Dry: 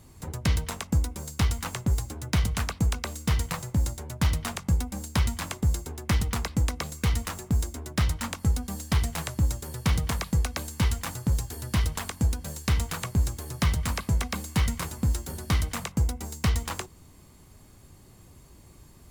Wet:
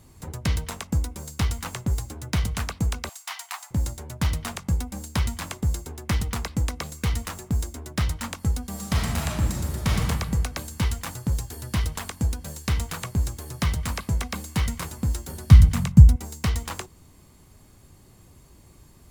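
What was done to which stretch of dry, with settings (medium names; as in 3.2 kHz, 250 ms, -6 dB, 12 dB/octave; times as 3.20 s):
3.09–3.71 s: Chebyshev high-pass 700 Hz, order 6
8.69–10.01 s: reverb throw, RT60 1.5 s, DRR -1.5 dB
15.51–16.16 s: resonant low shelf 250 Hz +13.5 dB, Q 1.5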